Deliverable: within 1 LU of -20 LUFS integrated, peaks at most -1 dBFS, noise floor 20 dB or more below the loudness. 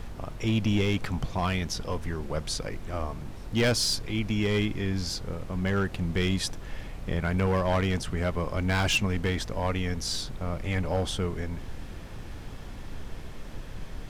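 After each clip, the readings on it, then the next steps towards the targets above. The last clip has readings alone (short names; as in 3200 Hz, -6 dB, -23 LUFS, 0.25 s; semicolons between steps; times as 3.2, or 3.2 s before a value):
clipped 1.1%; flat tops at -19.5 dBFS; noise floor -41 dBFS; noise floor target -49 dBFS; loudness -29.0 LUFS; peak -19.5 dBFS; loudness target -20.0 LUFS
-> clip repair -19.5 dBFS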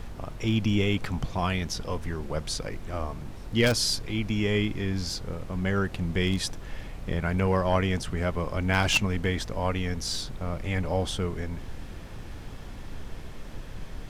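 clipped 0.0%; noise floor -41 dBFS; noise floor target -49 dBFS
-> noise print and reduce 8 dB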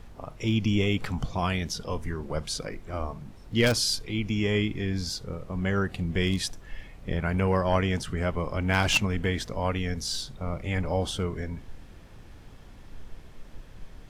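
noise floor -48 dBFS; noise floor target -49 dBFS
-> noise print and reduce 6 dB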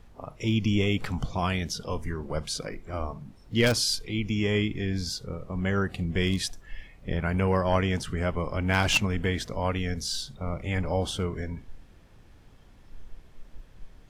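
noise floor -53 dBFS; loudness -28.5 LUFS; peak -10.5 dBFS; loudness target -20.0 LUFS
-> gain +8.5 dB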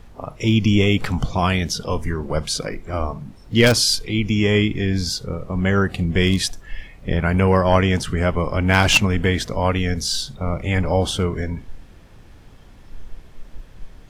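loudness -20.0 LUFS; peak -2.0 dBFS; noise floor -44 dBFS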